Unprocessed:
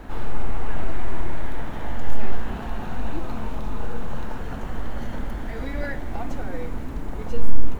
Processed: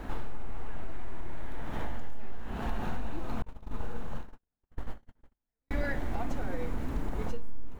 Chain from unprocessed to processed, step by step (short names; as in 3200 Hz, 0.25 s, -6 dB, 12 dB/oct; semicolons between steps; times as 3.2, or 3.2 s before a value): 3.42–5.71 gate -19 dBFS, range -60 dB; compressor 12:1, threshold -23 dBFS, peak gain reduction 19 dB; gain -1 dB